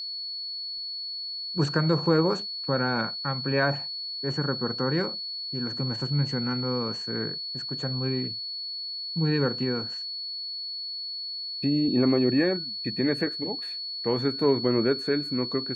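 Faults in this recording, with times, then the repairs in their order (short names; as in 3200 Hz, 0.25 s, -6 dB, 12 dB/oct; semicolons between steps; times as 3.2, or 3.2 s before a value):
tone 4400 Hz -32 dBFS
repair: notch 4400 Hz, Q 30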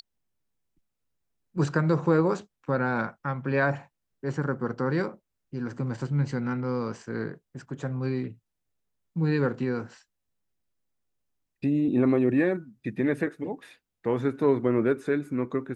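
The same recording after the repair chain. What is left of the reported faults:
none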